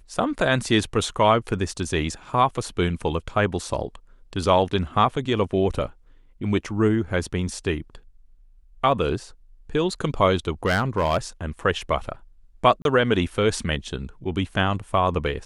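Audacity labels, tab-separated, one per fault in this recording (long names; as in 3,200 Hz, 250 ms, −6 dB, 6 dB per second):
10.660000	11.170000	clipping −15.5 dBFS
12.820000	12.850000	drop-out 32 ms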